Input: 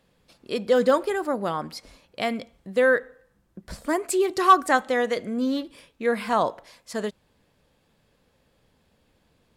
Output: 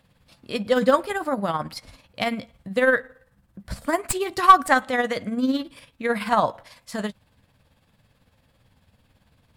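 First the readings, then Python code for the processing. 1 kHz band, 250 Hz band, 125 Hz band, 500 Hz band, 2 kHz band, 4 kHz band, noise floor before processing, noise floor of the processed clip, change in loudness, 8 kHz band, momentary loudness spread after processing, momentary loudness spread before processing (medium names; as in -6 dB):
+3.0 dB, +1.5 dB, +5.0 dB, -1.0 dB, +2.5 dB, +2.5 dB, -67 dBFS, -64 dBFS, +1.5 dB, +1.5 dB, 17 LU, 16 LU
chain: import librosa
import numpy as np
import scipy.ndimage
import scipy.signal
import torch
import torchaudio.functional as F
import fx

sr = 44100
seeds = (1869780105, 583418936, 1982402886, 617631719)

y = fx.tracing_dist(x, sr, depth_ms=0.024)
y = fx.doubler(y, sr, ms=15.0, db=-13)
y = y * (1.0 - 0.53 / 2.0 + 0.53 / 2.0 * np.cos(2.0 * np.pi * 18.0 * (np.arange(len(y)) / sr)))
y = fx.graphic_eq_15(y, sr, hz=(100, 400, 6300), db=(9, -9, -4))
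y = F.gain(torch.from_numpy(y), 5.5).numpy()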